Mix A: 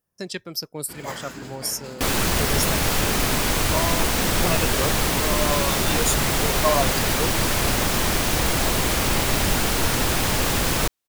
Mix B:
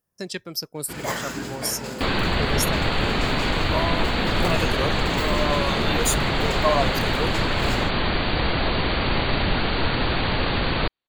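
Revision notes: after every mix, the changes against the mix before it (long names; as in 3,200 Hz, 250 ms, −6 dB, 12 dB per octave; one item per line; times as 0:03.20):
first sound +6.5 dB
second sound: add linear-phase brick-wall low-pass 4,700 Hz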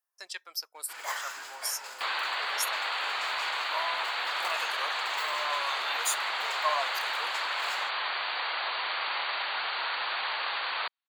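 master: add four-pole ladder high-pass 740 Hz, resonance 25%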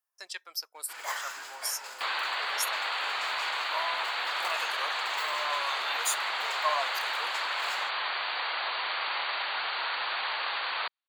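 nothing changed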